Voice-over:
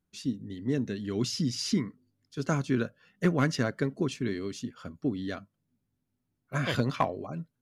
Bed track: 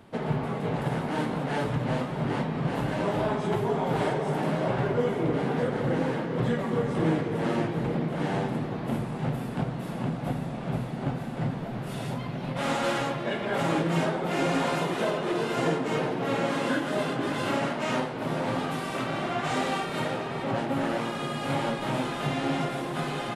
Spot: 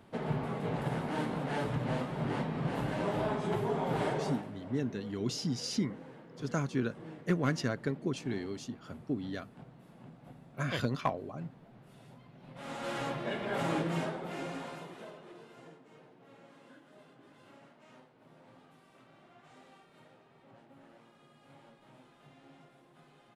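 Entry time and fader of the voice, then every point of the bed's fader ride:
4.05 s, -4.5 dB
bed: 4.29 s -5.5 dB
4.51 s -22.5 dB
12.34 s -22.5 dB
13.09 s -6 dB
13.81 s -6 dB
15.85 s -30 dB

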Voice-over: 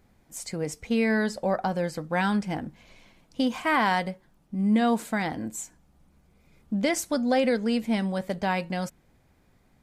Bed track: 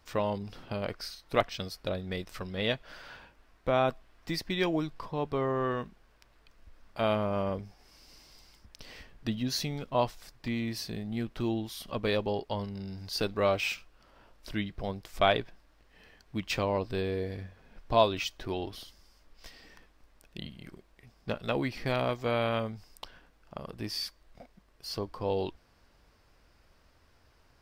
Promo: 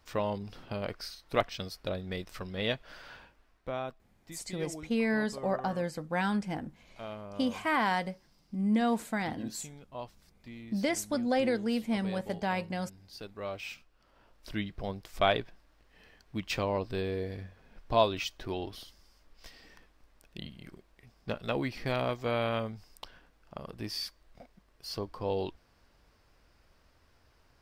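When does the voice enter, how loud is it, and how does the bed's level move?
4.00 s, -5.0 dB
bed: 3.21 s -1.5 dB
4.06 s -14 dB
13.21 s -14 dB
14.56 s -1.5 dB

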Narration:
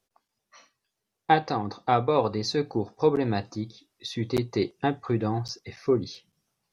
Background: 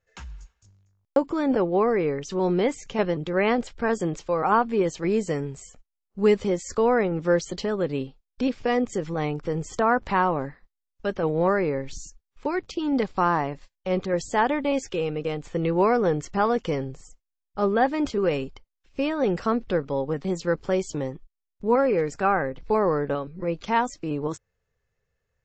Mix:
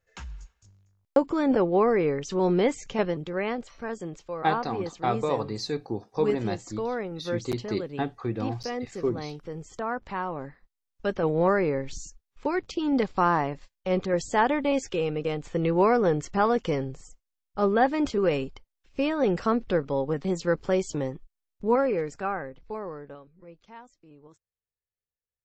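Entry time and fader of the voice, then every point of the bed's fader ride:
3.15 s, -4.0 dB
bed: 2.86 s 0 dB
3.66 s -9.5 dB
10.26 s -9.5 dB
10.85 s -0.5 dB
21.61 s -0.5 dB
23.8 s -24 dB

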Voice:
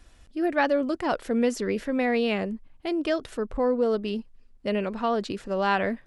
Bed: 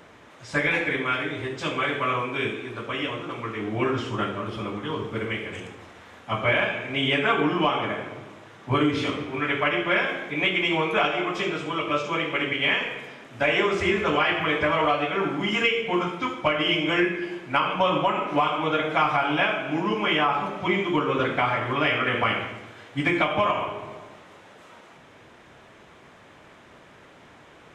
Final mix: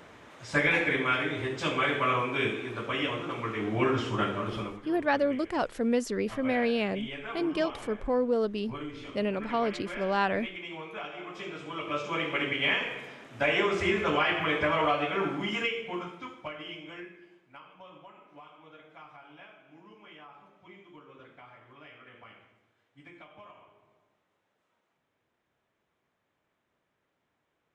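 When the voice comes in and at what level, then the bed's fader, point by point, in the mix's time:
4.50 s, -3.0 dB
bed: 4.59 s -1.5 dB
4.87 s -17 dB
11.03 s -17 dB
12.25 s -4 dB
15.24 s -4 dB
17.68 s -28.5 dB

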